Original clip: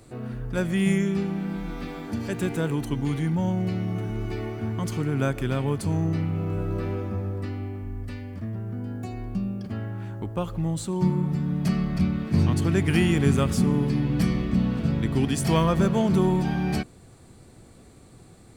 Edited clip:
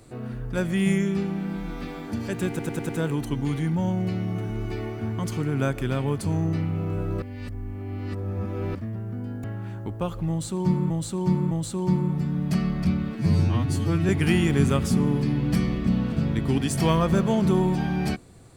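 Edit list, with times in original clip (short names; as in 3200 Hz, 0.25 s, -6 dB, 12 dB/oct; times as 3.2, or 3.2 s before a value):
2.49 stutter 0.10 s, 5 plays
6.82–8.35 reverse
9.04–9.8 cut
10.65–11.26 loop, 3 plays
12.29–12.76 stretch 2×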